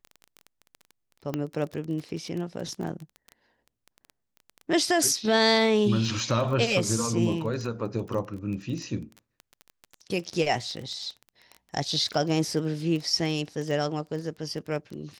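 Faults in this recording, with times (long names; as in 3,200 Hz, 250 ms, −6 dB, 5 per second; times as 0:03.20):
surface crackle 18 per second −32 dBFS
0:01.34: click −16 dBFS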